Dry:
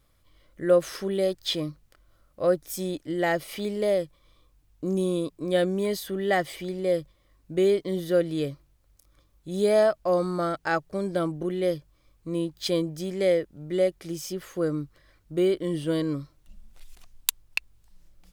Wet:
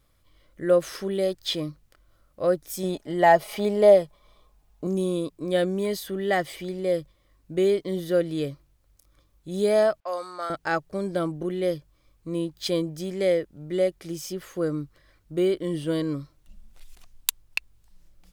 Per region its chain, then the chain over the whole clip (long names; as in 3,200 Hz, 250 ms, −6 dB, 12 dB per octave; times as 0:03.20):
0:02.83–0:04.87: parametric band 760 Hz +11 dB 1 octave + comb filter 4.8 ms, depth 48%
0:10.00–0:10.50: high-pass filter 810 Hz + low-pass that shuts in the quiet parts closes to 2,500 Hz, open at −28 dBFS
whole clip: no processing